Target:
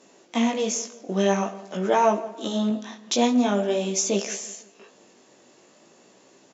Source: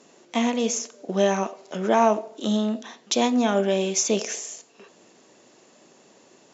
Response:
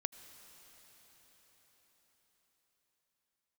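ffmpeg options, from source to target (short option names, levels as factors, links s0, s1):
-filter_complex "[0:a]asettb=1/sr,asplit=3[s0][s1][s2];[s0]atrim=end=2.704[s3];[s1]atrim=start=2.7:end=4.12,asetpts=PTS-STARTPTS,afade=t=in:d=0.004:c=qsin,afade=t=out:st=1.416:d=0.004:c=qsin,adynamicequalizer=threshold=0.0112:dfrequency=1900:dqfactor=0.86:tfrequency=1900:tqfactor=0.86:attack=5:release=100:ratio=0.375:range=2.5:mode=cutabove:tftype=bell[s4];[s2]atrim=start=4.116[s5];[s3][s4]acrossfade=d=0.004:c1=hsin:c2=qsin[s6];[s6][s5]acrossfade=d=0.004:c1=qsin:c2=hsin,flanger=delay=15:depth=6.1:speed=0.47,asplit=2[s7][s8];[s8]adelay=168,lowpass=f=3900:p=1,volume=0.126,asplit=2[s9][s10];[s10]adelay=168,lowpass=f=3900:p=1,volume=0.44,asplit=2[s11][s12];[s12]adelay=168,lowpass=f=3900:p=1,volume=0.44,asplit=2[s13][s14];[s14]adelay=168,lowpass=f=3900:p=1,volume=0.44[s15];[s7][s9][s11][s13][s15]amix=inputs=5:normalize=0,volume=1.33"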